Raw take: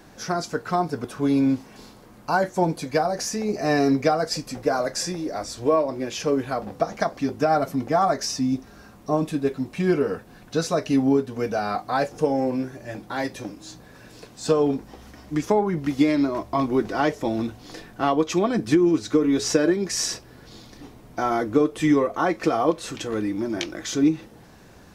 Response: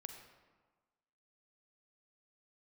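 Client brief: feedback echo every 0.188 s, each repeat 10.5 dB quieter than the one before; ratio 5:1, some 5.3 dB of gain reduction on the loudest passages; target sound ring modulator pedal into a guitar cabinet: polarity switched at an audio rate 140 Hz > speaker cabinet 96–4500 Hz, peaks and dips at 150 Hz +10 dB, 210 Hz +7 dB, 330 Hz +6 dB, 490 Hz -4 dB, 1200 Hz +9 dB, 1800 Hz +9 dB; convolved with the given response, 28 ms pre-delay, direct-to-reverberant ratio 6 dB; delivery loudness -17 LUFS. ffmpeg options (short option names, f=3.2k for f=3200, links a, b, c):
-filter_complex "[0:a]acompressor=threshold=-20dB:ratio=5,aecho=1:1:188|376|564:0.299|0.0896|0.0269,asplit=2[a][b];[1:a]atrim=start_sample=2205,adelay=28[c];[b][c]afir=irnorm=-1:irlink=0,volume=-1.5dB[d];[a][d]amix=inputs=2:normalize=0,aeval=exprs='val(0)*sgn(sin(2*PI*140*n/s))':c=same,highpass=96,equalizer=f=150:t=q:w=4:g=10,equalizer=f=210:t=q:w=4:g=7,equalizer=f=330:t=q:w=4:g=6,equalizer=f=490:t=q:w=4:g=-4,equalizer=f=1.2k:t=q:w=4:g=9,equalizer=f=1.8k:t=q:w=4:g=9,lowpass=f=4.5k:w=0.5412,lowpass=f=4.5k:w=1.3066,volume=4.5dB"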